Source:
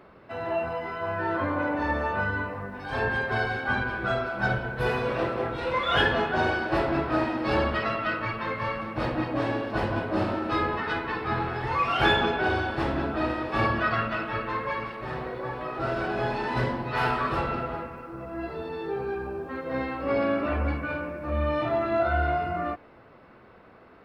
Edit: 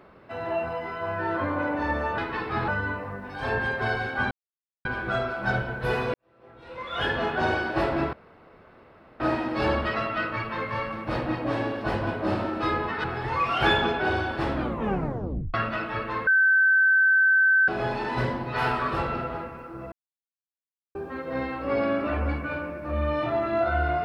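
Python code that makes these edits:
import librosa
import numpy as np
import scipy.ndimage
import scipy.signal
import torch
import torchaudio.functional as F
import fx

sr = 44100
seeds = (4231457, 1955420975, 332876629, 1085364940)

y = fx.edit(x, sr, fx.insert_silence(at_s=3.81, length_s=0.54),
    fx.fade_in_span(start_s=5.1, length_s=1.2, curve='qua'),
    fx.insert_room_tone(at_s=7.09, length_s=1.07),
    fx.move(start_s=10.93, length_s=0.5, to_s=2.18),
    fx.tape_stop(start_s=12.93, length_s=1.0),
    fx.bleep(start_s=14.66, length_s=1.41, hz=1540.0, db=-16.0),
    fx.silence(start_s=18.31, length_s=1.03), tone=tone)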